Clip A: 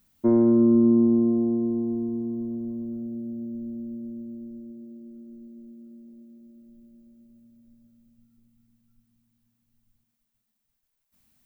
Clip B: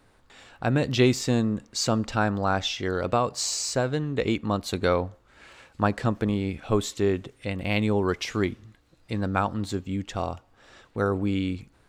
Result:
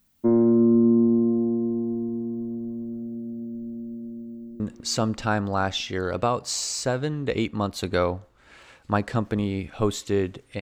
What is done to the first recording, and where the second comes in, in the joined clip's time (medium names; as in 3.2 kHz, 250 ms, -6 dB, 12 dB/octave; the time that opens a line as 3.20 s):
clip A
4.35–4.60 s: echo throw 200 ms, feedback 75%, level -7 dB
4.60 s: go over to clip B from 1.50 s